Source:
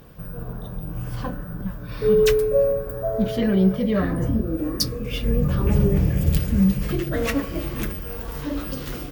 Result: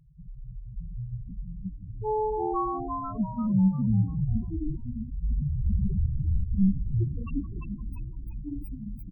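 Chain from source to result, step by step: comb filter that takes the minimum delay 0.77 ms; loudest bins only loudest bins 2; on a send: frequency-shifting echo 345 ms, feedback 42%, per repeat -79 Hz, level -3.5 dB; on the sum: trim -3 dB

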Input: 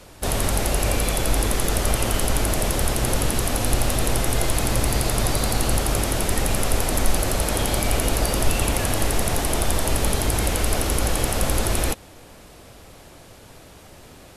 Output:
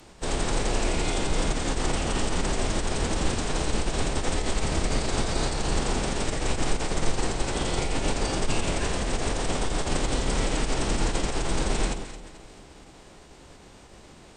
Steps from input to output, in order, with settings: echo whose repeats swap between lows and highs 109 ms, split 1 kHz, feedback 65%, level -8.5 dB; formant-preserving pitch shift -8.5 st; trim -2.5 dB

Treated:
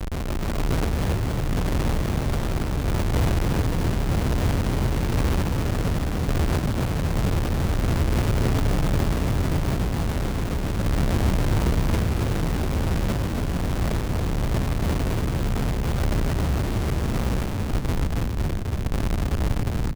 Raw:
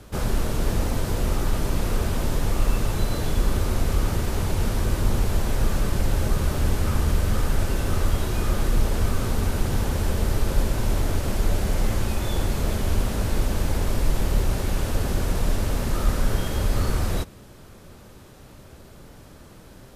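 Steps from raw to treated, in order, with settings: high-pass 42 Hz 12 dB/octave; tilt EQ -3.5 dB/octave; hum notches 60/120 Hz; peak limiter -8 dBFS, peak gain reduction 10 dB; Schmitt trigger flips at -32.5 dBFS; random-step tremolo; frequency-shifting echo 279 ms, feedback 58%, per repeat +35 Hz, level -3.5 dB; trim -7 dB

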